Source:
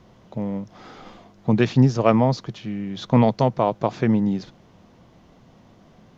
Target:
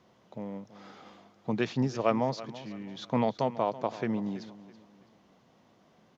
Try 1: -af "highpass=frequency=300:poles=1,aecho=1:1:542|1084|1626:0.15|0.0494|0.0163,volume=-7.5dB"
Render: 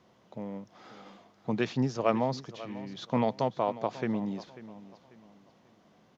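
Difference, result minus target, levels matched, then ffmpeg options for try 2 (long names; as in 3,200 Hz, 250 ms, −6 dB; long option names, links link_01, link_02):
echo 213 ms late
-af "highpass=frequency=300:poles=1,aecho=1:1:329|658|987:0.15|0.0494|0.0163,volume=-7.5dB"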